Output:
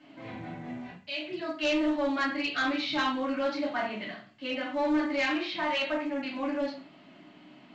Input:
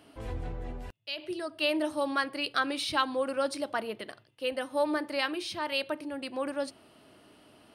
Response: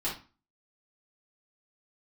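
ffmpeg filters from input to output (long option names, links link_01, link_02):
-filter_complex "[0:a]asettb=1/sr,asplit=3[link_01][link_02][link_03];[link_01]atrim=end=5.264[link_04];[link_02]atrim=start=5.26:end=6.18,asetpts=PTS-STARTPTS,afade=type=in:duration=0.004:curve=qsin,afade=type=out:start_time=0.916:duration=0.004:curve=qsin,asplit=2[link_05][link_06];[link_06]highpass=frequency=720:poles=1,volume=11dB,asoftclip=type=tanh:threshold=-17.5dB[link_07];[link_05][link_07]amix=inputs=2:normalize=0,lowpass=frequency=2100:poles=1,volume=-6dB[link_08];[link_03]atrim=start=6.176[link_09];[link_04][link_08]acrossfade=duration=0.004:curve1=hsin:curve2=qsin[link_10];[link_10][link_09]acrossfade=duration=0.004:curve1=qsin:curve2=hsin,highpass=frequency=130:width=0.5412,highpass=frequency=130:width=1.3066,equalizer=frequency=190:width_type=q:width=4:gain=9,equalizer=frequency=470:width_type=q:width=4:gain=-6,equalizer=frequency=2100:width_type=q:width=4:gain=8,lowpass=frequency=4900:width=0.5412,lowpass=frequency=4900:width=1.3066[link_11];[1:a]atrim=start_sample=2205,asetrate=37485,aresample=44100[link_12];[link_11][link_12]afir=irnorm=-1:irlink=0,asoftclip=type=tanh:threshold=-16.5dB,volume=-5dB" -ar 16000 -c:a pcm_mulaw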